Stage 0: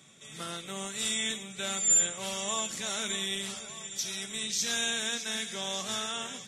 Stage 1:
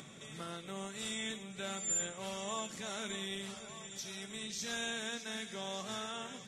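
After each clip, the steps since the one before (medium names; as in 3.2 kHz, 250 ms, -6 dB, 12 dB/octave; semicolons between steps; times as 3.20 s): treble shelf 2.4 kHz -9.5 dB; upward compressor, threshold -39 dBFS; trim -3 dB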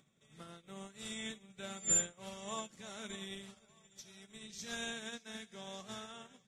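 bass shelf 150 Hz +7 dB; upward expansion 2.5:1, over -52 dBFS; trim +5 dB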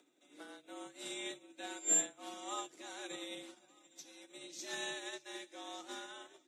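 frequency shift +140 Hz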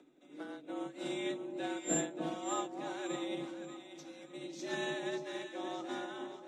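RIAA curve playback; echo whose repeats swap between lows and highs 291 ms, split 940 Hz, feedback 56%, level -5 dB; trim +4.5 dB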